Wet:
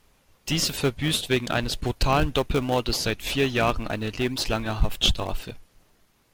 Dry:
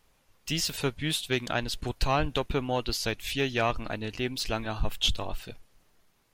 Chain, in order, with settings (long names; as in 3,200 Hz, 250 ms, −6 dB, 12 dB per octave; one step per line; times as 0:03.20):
in parallel at −11 dB: sample-and-hold swept by an LFO 35×, swing 100% 2 Hz
on the sum: harmonic generator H 2 −13 dB, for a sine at −11 dBFS
level +4.5 dB